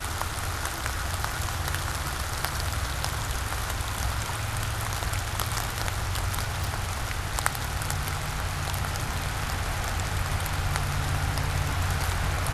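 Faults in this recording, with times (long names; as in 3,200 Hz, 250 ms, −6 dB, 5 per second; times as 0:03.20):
0:06.64: click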